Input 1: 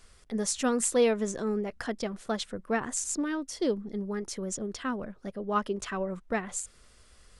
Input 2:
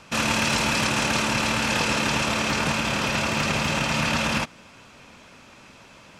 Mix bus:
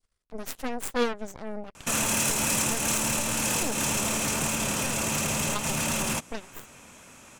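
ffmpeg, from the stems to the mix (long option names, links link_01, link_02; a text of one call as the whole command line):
ffmpeg -i stem1.wav -i stem2.wav -filter_complex "[0:a]aeval=exprs='0.211*(cos(1*acos(clip(val(0)/0.211,-1,1)))-cos(1*PI/2))+0.0668*(cos(3*acos(clip(val(0)/0.211,-1,1)))-cos(3*PI/2))+0.015*(cos(8*acos(clip(val(0)/0.211,-1,1)))-cos(8*PI/2))':channel_layout=same,volume=2.5dB,asplit=2[link_01][link_02];[1:a]asoftclip=type=hard:threshold=-21.5dB,aexciter=amount=7.4:drive=6.3:freq=6600,highshelf=frequency=10000:gain=-11,adelay=1750,volume=-2.5dB[link_03];[link_02]apad=whole_len=350576[link_04];[link_03][link_04]sidechaincompress=threshold=-33dB:ratio=8:attack=33:release=137[link_05];[link_01][link_05]amix=inputs=2:normalize=0,adynamicequalizer=threshold=0.0112:dfrequency=1600:dqfactor=0.96:tfrequency=1600:tqfactor=0.96:attack=5:release=100:ratio=0.375:range=2:mode=cutabove:tftype=bell" out.wav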